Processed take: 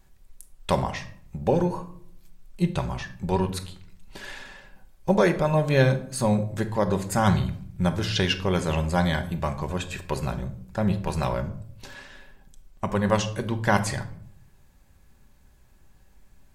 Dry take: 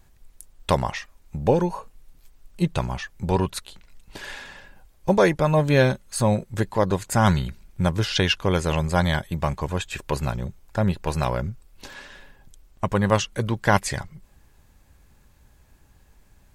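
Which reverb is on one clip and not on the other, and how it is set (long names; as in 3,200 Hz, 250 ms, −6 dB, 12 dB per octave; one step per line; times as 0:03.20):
rectangular room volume 970 cubic metres, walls furnished, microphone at 1.1 metres
level −3.5 dB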